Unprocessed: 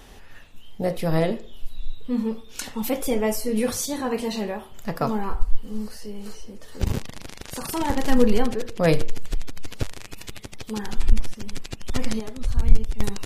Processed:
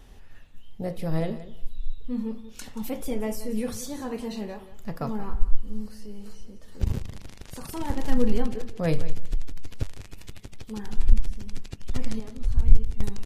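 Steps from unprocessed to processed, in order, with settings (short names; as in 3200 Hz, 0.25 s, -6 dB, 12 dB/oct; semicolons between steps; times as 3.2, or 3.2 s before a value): low shelf 210 Hz +9.5 dB; on a send: feedback echo 0.18 s, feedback 17%, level -14.5 dB; on the sum: gain -9.5 dB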